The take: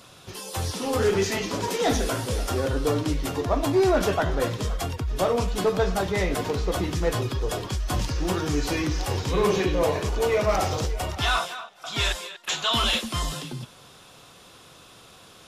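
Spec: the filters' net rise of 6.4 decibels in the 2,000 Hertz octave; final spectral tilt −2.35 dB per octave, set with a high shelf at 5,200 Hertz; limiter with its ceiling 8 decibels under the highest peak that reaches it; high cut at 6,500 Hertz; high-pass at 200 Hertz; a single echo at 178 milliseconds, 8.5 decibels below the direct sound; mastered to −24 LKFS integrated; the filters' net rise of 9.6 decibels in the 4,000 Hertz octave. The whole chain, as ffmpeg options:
ffmpeg -i in.wav -af "highpass=200,lowpass=6500,equalizer=frequency=2000:width_type=o:gain=5,equalizer=frequency=4000:width_type=o:gain=8.5,highshelf=frequency=5200:gain=6,alimiter=limit=-14dB:level=0:latency=1,aecho=1:1:178:0.376" out.wav

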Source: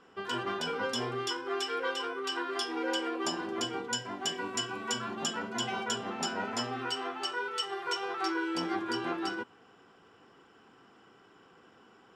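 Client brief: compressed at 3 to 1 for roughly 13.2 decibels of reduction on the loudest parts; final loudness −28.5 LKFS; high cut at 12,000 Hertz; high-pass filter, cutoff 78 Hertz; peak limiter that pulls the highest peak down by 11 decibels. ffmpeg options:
ffmpeg -i in.wav -af "highpass=78,lowpass=12000,acompressor=threshold=-47dB:ratio=3,volume=19.5dB,alimiter=limit=-20dB:level=0:latency=1" out.wav

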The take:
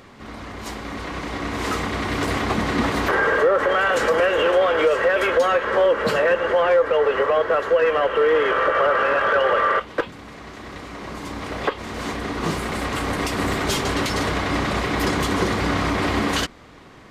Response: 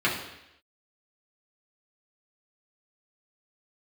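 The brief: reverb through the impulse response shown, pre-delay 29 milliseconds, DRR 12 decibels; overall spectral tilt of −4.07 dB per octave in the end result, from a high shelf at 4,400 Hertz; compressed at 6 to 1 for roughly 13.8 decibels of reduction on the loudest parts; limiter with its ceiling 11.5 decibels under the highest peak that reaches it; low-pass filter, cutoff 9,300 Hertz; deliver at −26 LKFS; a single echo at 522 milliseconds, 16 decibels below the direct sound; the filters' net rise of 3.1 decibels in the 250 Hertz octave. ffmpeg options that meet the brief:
-filter_complex "[0:a]lowpass=9300,equalizer=frequency=250:width_type=o:gain=4,highshelf=frequency=4400:gain=-6.5,acompressor=threshold=-29dB:ratio=6,alimiter=level_in=6.5dB:limit=-24dB:level=0:latency=1,volume=-6.5dB,aecho=1:1:522:0.158,asplit=2[link_01][link_02];[1:a]atrim=start_sample=2205,adelay=29[link_03];[link_02][link_03]afir=irnorm=-1:irlink=0,volume=-26.5dB[link_04];[link_01][link_04]amix=inputs=2:normalize=0,volume=12dB"

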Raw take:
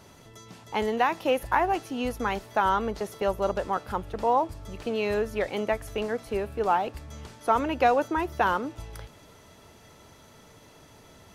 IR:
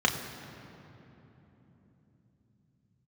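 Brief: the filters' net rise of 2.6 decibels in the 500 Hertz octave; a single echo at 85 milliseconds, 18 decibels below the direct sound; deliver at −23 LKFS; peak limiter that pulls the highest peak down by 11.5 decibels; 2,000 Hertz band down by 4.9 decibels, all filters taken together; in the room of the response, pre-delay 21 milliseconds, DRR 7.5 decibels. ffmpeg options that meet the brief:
-filter_complex "[0:a]equalizer=frequency=500:width_type=o:gain=3.5,equalizer=frequency=2000:width_type=o:gain=-7,alimiter=limit=-20.5dB:level=0:latency=1,aecho=1:1:85:0.126,asplit=2[link_01][link_02];[1:a]atrim=start_sample=2205,adelay=21[link_03];[link_02][link_03]afir=irnorm=-1:irlink=0,volume=-20.5dB[link_04];[link_01][link_04]amix=inputs=2:normalize=0,volume=7.5dB"

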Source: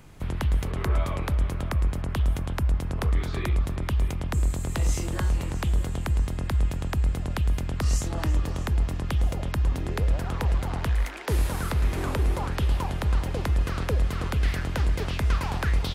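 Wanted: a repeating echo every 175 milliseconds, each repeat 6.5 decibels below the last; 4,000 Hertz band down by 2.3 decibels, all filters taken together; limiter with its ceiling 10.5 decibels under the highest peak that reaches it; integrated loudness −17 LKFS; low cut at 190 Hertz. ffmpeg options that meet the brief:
ffmpeg -i in.wav -af "highpass=190,equalizer=frequency=4000:width_type=o:gain=-3,alimiter=level_in=3dB:limit=-24dB:level=0:latency=1,volume=-3dB,aecho=1:1:175|350|525|700|875|1050:0.473|0.222|0.105|0.0491|0.0231|0.0109,volume=20dB" out.wav

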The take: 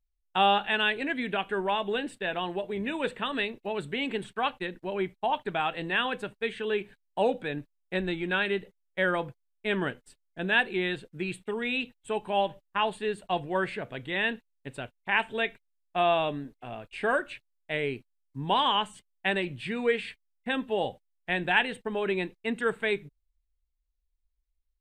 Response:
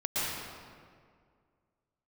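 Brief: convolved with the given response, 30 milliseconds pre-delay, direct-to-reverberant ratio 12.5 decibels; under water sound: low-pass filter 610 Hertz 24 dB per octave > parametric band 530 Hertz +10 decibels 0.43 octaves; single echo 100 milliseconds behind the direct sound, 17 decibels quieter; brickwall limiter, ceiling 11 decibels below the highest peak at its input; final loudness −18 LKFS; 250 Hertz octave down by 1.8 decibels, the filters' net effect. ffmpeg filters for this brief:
-filter_complex "[0:a]equalizer=frequency=250:width_type=o:gain=-3.5,alimiter=limit=-20dB:level=0:latency=1,aecho=1:1:100:0.141,asplit=2[link_01][link_02];[1:a]atrim=start_sample=2205,adelay=30[link_03];[link_02][link_03]afir=irnorm=-1:irlink=0,volume=-21.5dB[link_04];[link_01][link_04]amix=inputs=2:normalize=0,lowpass=frequency=610:width=0.5412,lowpass=frequency=610:width=1.3066,equalizer=frequency=530:width_type=o:width=0.43:gain=10,volume=15dB"

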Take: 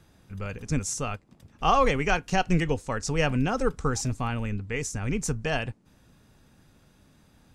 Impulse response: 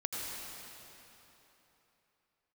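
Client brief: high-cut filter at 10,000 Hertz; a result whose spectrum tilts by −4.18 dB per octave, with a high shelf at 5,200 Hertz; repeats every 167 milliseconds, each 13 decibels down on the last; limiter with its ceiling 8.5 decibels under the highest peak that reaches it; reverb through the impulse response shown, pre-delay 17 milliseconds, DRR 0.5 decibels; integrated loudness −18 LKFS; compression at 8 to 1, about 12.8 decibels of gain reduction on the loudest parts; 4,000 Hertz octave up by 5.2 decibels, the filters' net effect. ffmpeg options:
-filter_complex "[0:a]lowpass=10000,equalizer=frequency=4000:width_type=o:gain=7,highshelf=frequency=5200:gain=3,acompressor=threshold=-30dB:ratio=8,alimiter=level_in=3.5dB:limit=-24dB:level=0:latency=1,volume=-3.5dB,aecho=1:1:167|334|501:0.224|0.0493|0.0108,asplit=2[link_01][link_02];[1:a]atrim=start_sample=2205,adelay=17[link_03];[link_02][link_03]afir=irnorm=-1:irlink=0,volume=-4dB[link_04];[link_01][link_04]amix=inputs=2:normalize=0,volume=17.5dB"

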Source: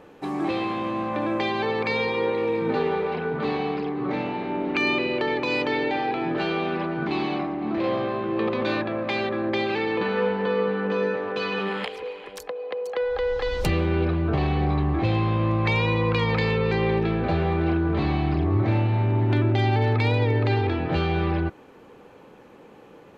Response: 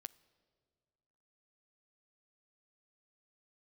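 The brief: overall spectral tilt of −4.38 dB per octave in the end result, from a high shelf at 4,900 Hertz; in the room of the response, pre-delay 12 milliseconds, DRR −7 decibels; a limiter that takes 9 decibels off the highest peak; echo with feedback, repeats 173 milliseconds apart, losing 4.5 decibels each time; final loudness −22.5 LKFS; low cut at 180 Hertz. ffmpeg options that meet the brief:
-filter_complex "[0:a]highpass=180,highshelf=frequency=4900:gain=7.5,alimiter=limit=-17.5dB:level=0:latency=1,aecho=1:1:173|346|519|692|865|1038|1211|1384|1557:0.596|0.357|0.214|0.129|0.0772|0.0463|0.0278|0.0167|0.01,asplit=2[link_01][link_02];[1:a]atrim=start_sample=2205,adelay=12[link_03];[link_02][link_03]afir=irnorm=-1:irlink=0,volume=13dB[link_04];[link_01][link_04]amix=inputs=2:normalize=0,volume=-6dB"

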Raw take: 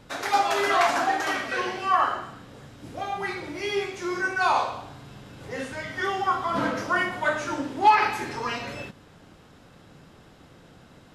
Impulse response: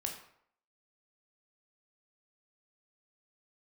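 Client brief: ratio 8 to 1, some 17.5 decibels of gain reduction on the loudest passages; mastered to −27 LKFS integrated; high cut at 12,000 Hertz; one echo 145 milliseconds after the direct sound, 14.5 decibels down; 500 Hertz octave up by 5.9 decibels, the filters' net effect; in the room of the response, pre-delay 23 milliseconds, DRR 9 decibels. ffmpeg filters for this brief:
-filter_complex "[0:a]lowpass=12000,equalizer=frequency=500:width_type=o:gain=8.5,acompressor=threshold=-28dB:ratio=8,aecho=1:1:145:0.188,asplit=2[link_01][link_02];[1:a]atrim=start_sample=2205,adelay=23[link_03];[link_02][link_03]afir=irnorm=-1:irlink=0,volume=-9.5dB[link_04];[link_01][link_04]amix=inputs=2:normalize=0,volume=5dB"

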